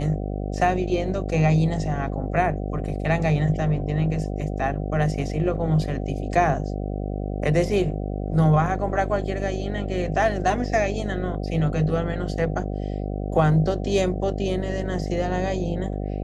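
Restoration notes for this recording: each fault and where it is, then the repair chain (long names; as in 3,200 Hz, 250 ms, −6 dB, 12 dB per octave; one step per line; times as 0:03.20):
mains buzz 50 Hz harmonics 15 −28 dBFS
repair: hum removal 50 Hz, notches 15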